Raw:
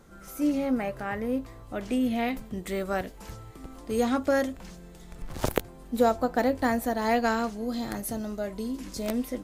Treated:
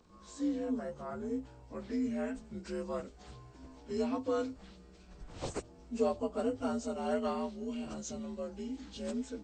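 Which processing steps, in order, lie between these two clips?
partials spread apart or drawn together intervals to 86%
dynamic equaliser 1,800 Hz, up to −5 dB, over −47 dBFS, Q 1.4
level −7 dB

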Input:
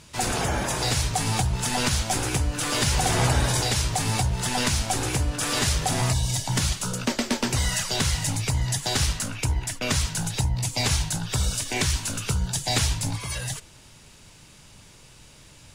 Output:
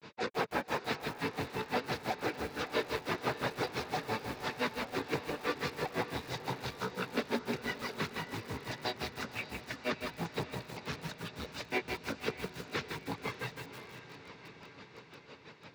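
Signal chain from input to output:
reverb reduction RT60 0.61 s
mains-hum notches 60/120/180/240/300/360/420 Hz
in parallel at −1.5 dB: downward compressor 6 to 1, threshold −34 dBFS, peak gain reduction 14 dB
on the sum: pitch-shifted copies added −4 semitones −15 dB, +3 semitones −17 dB
soft clipping −26.5 dBFS, distortion −8 dB
granular cloud 132 ms, grains 5.9 per second, spray 20 ms, pitch spread up and down by 0 semitones
loudspeaker in its box 220–3,800 Hz, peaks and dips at 450 Hz +7 dB, 690 Hz −4 dB, 3,100 Hz −9 dB
feedback delay with all-pass diffusion 576 ms, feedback 67%, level −12 dB
feedback echo at a low word length 159 ms, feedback 55%, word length 8 bits, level −5 dB
level +2 dB

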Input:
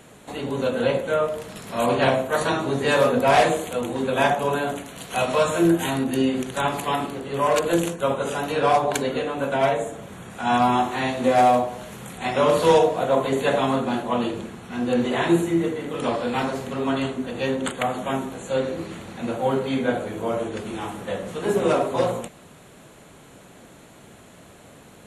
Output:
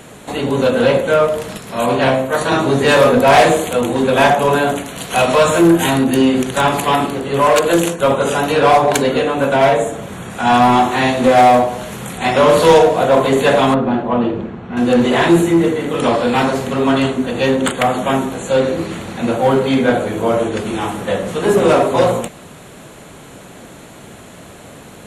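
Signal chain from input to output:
0:01.57–0:02.52: tuned comb filter 66 Hz, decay 0.67 s, harmonics all, mix 50%
0:07.51–0:08.00: low-shelf EQ 240 Hz −5.5 dB
in parallel at −8.5 dB: wave folding −19.5 dBFS
0:13.74–0:14.77: on the sum: head-to-tape spacing loss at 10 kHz 36 dB
level +7.5 dB

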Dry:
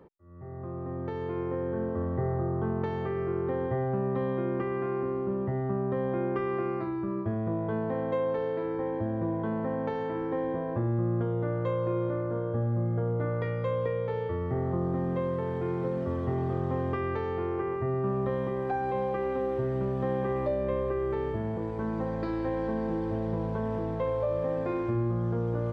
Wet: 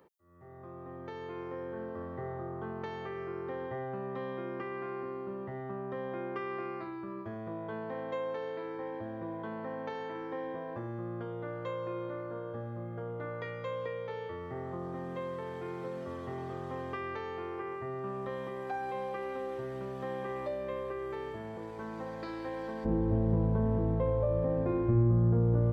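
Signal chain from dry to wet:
spectral tilt +3 dB per octave, from 0:22.84 −3 dB per octave
level −4.5 dB

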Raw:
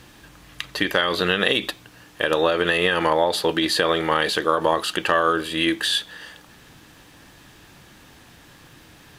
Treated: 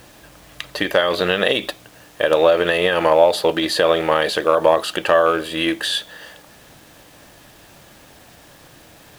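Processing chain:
loose part that buzzes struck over −28 dBFS, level −23 dBFS
parametric band 610 Hz +9.5 dB 0.68 octaves
bit-depth reduction 8 bits, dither none

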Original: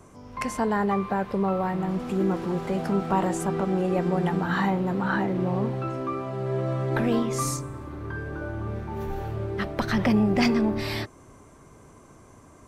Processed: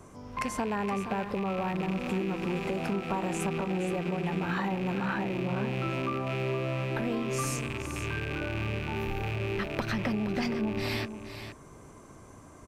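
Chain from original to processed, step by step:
loose part that buzzes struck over −36 dBFS, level −25 dBFS
downward compressor, threshold −28 dBFS, peak gain reduction 10.5 dB
single-tap delay 470 ms −10 dB

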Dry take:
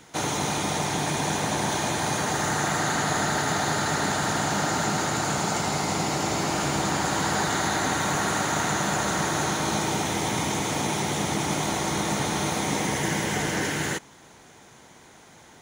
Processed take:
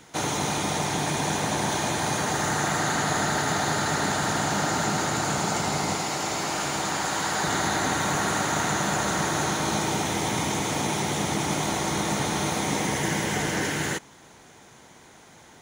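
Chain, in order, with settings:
0:05.95–0:07.44: low-shelf EQ 400 Hz −8 dB

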